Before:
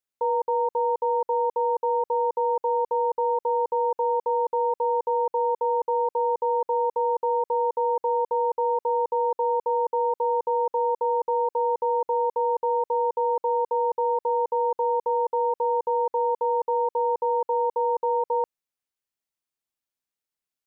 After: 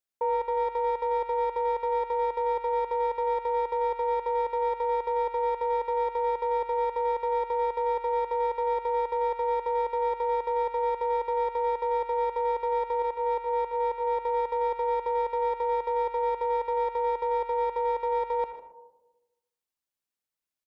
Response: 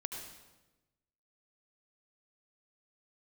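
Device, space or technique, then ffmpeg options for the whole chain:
saturated reverb return: -filter_complex "[0:a]asettb=1/sr,asplit=3[a][b][c];[a]atrim=end=13.024[d];[b]atrim=start=13.02:end=14.22,asetpts=PTS-STARTPTS,afade=t=in:d=0.004:c=qsin,afade=t=out:st=1.196:d=0.004:c=qsin,agate=range=-9dB:threshold=-24dB:ratio=16:detection=peak[e];[c]atrim=start=14.216[f];[d][e]acrossfade=d=0.004:c1=hsin:c2=qsin[g];[g][f]acrossfade=d=0.004:c1=qsin:c2=hsin,asplit=2[h][i];[1:a]atrim=start_sample=2205[j];[i][j]afir=irnorm=-1:irlink=0,asoftclip=type=tanh:threshold=-22.5dB,volume=-2dB[k];[h][k]amix=inputs=2:normalize=0,aecho=1:1:154:0.178,volume=-6dB"

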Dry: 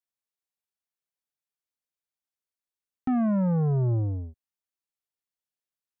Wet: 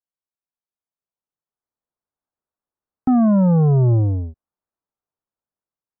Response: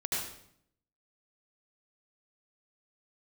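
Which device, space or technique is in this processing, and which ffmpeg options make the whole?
action camera in a waterproof case: -af "lowpass=f=1.3k:w=0.5412,lowpass=f=1.3k:w=1.3066,dynaudnorm=f=600:g=5:m=11dB,volume=-1.5dB" -ar 44100 -c:a aac -b:a 96k

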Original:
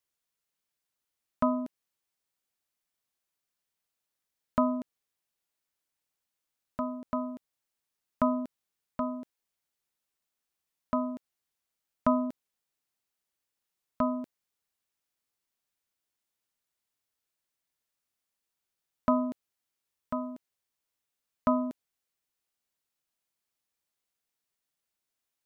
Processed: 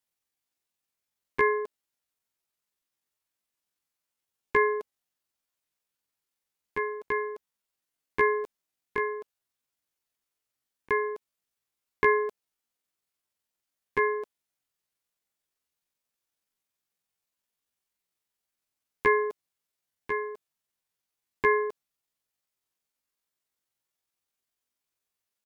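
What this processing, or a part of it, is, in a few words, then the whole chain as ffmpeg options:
chipmunk voice: -af "asetrate=74167,aresample=44100,atempo=0.594604,volume=2.5dB"

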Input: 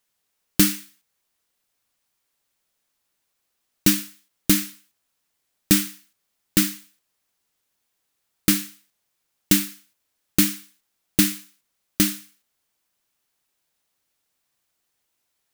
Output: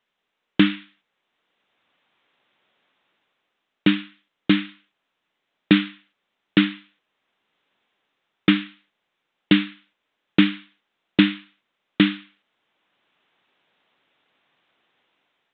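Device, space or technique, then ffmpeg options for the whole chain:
Bluetooth headset: -af "highpass=180,dynaudnorm=f=310:g=5:m=10dB,aresample=8000,aresample=44100,volume=4dB" -ar 16000 -c:a sbc -b:a 64k

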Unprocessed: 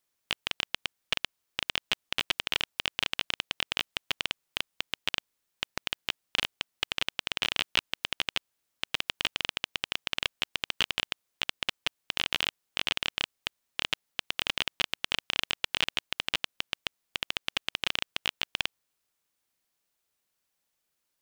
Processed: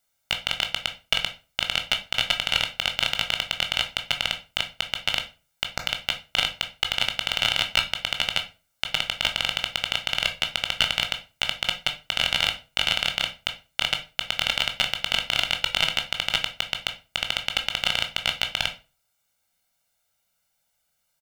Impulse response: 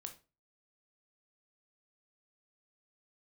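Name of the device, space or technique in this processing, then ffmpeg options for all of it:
microphone above a desk: -filter_complex "[0:a]aecho=1:1:1.4:0.84[a];[1:a]atrim=start_sample=2205[b];[a][b]afir=irnorm=-1:irlink=0,volume=9dB"

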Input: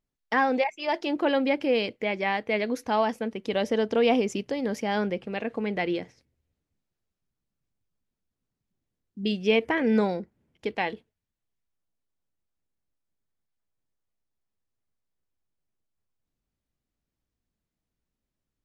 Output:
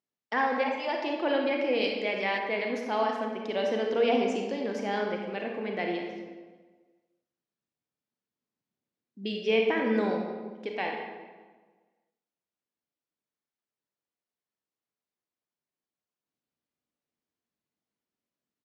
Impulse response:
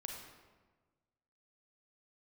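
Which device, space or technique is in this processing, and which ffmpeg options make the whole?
supermarket ceiling speaker: -filter_complex "[0:a]highpass=220,lowpass=6.6k[a];[1:a]atrim=start_sample=2205[b];[a][b]afir=irnorm=-1:irlink=0,asettb=1/sr,asplit=3[c][d][e];[c]atrim=end=1.814[f];[d]atrim=start=1.81:end=2.38,asetpts=PTS-STARTPTS,afade=t=in:d=0.004:c=qsin,afade=t=out:st=0.566:d=0.004:c=qsin,highshelf=f=4.3k:g=11.5[g];[e]atrim=start=2.376[h];[f][g]acrossfade=d=0.004:c1=hsin:c2=qsin[i];[i][h]acrossfade=d=0.004:c1=qsin:c2=hsin,aecho=1:1:199|398|597:0.0794|0.0302|0.0115"

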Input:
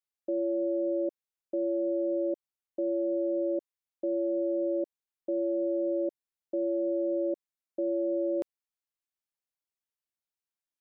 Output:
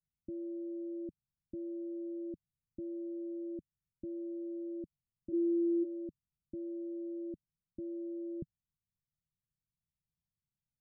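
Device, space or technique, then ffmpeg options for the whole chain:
the neighbour's flat through the wall: -filter_complex "[0:a]lowpass=f=160:w=0.5412,lowpass=f=160:w=1.3066,equalizer=f=160:t=o:w=0.77:g=5.5,asplit=3[a][b][c];[a]afade=t=out:st=5.32:d=0.02[d];[b]lowshelf=f=380:t=q:w=3:g=10.5,afade=t=in:st=5.32:d=0.02,afade=t=out:st=5.83:d=0.02[e];[c]afade=t=in:st=5.83:d=0.02[f];[d][e][f]amix=inputs=3:normalize=0,volume=17dB"

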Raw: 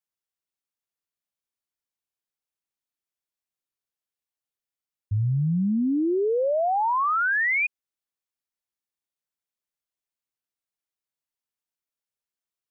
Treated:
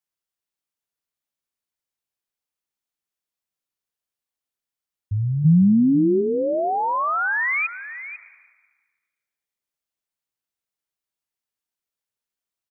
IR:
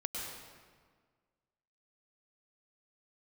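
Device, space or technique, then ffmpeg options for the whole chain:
compressed reverb return: -filter_complex "[0:a]asplit=3[a][b][c];[a]afade=t=out:st=5.44:d=0.02[d];[b]aemphasis=mode=reproduction:type=riaa,afade=t=in:st=5.44:d=0.02,afade=t=out:st=6.2:d=0.02[e];[c]afade=t=in:st=6.2:d=0.02[f];[d][e][f]amix=inputs=3:normalize=0,aecho=1:1:496:0.211,asplit=2[g][h];[1:a]atrim=start_sample=2205[i];[h][i]afir=irnorm=-1:irlink=0,acompressor=threshold=-27dB:ratio=6,volume=-12dB[j];[g][j]amix=inputs=2:normalize=0"

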